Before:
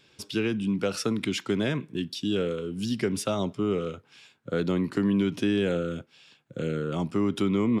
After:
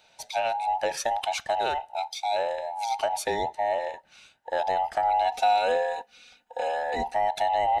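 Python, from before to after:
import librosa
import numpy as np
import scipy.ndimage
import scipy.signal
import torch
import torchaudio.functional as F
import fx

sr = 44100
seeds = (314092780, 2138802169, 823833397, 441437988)

y = fx.band_invert(x, sr, width_hz=1000)
y = fx.comb(y, sr, ms=4.1, depth=0.93, at=(5.25, 7.15))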